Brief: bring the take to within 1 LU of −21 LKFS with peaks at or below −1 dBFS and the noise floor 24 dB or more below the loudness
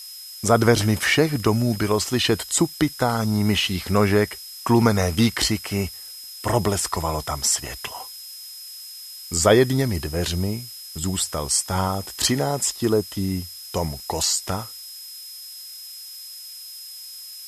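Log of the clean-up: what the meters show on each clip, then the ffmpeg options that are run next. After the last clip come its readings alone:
interfering tone 5,100 Hz; level of the tone −38 dBFS; background noise floor −39 dBFS; target noise floor −46 dBFS; integrated loudness −22.0 LKFS; sample peak −3.0 dBFS; target loudness −21.0 LKFS
→ -af "bandreject=frequency=5100:width=30"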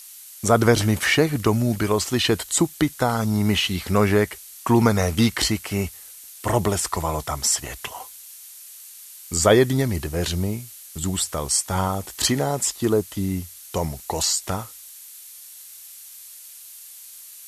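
interfering tone none found; background noise floor −43 dBFS; target noise floor −46 dBFS
→ -af "afftdn=noise_reduction=6:noise_floor=-43"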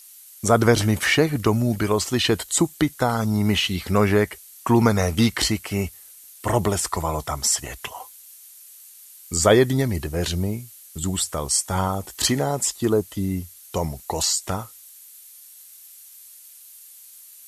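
background noise floor −46 dBFS; integrated loudness −22.0 LKFS; sample peak −3.0 dBFS; target loudness −21.0 LKFS
→ -af "volume=1dB"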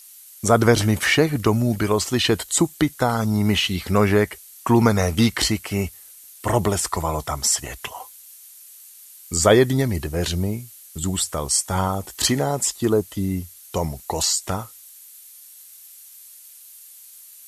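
integrated loudness −21.0 LKFS; sample peak −2.0 dBFS; background noise floor −45 dBFS

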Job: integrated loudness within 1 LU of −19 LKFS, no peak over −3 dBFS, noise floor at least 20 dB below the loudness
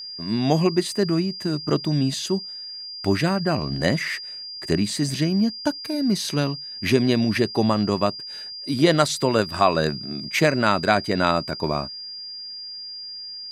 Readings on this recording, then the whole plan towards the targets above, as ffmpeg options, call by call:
interfering tone 4,800 Hz; level of the tone −33 dBFS; integrated loudness −23.0 LKFS; sample peak −3.0 dBFS; target loudness −19.0 LKFS
→ -af "bandreject=frequency=4800:width=30"
-af "volume=4dB,alimiter=limit=-3dB:level=0:latency=1"

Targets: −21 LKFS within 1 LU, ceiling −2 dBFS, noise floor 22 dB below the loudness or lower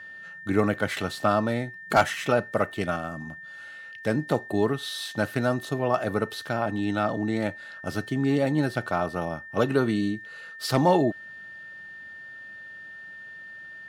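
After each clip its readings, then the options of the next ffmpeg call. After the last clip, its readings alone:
interfering tone 1,800 Hz; level of the tone −40 dBFS; integrated loudness −26.5 LKFS; sample peak −9.0 dBFS; target loudness −21.0 LKFS
→ -af "bandreject=frequency=1800:width=30"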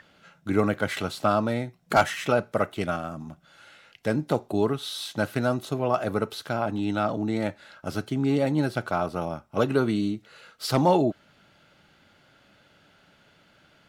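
interfering tone none found; integrated loudness −26.5 LKFS; sample peak −9.0 dBFS; target loudness −21.0 LKFS
→ -af "volume=5.5dB"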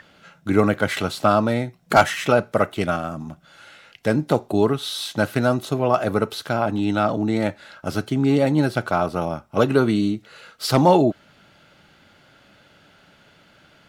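integrated loudness −21.0 LKFS; sample peak −3.5 dBFS; background noise floor −55 dBFS

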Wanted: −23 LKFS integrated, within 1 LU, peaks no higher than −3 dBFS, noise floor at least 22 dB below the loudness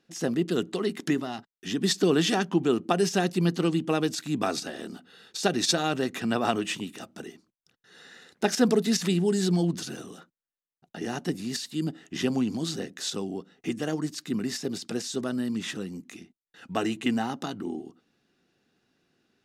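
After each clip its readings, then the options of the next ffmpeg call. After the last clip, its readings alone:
integrated loudness −28.0 LKFS; sample peak −8.5 dBFS; target loudness −23.0 LKFS
→ -af "volume=5dB"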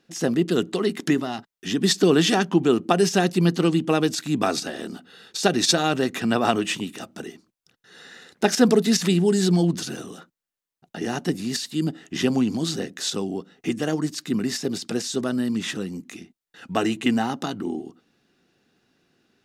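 integrated loudness −23.0 LKFS; sample peak −3.5 dBFS; background noise floor −89 dBFS

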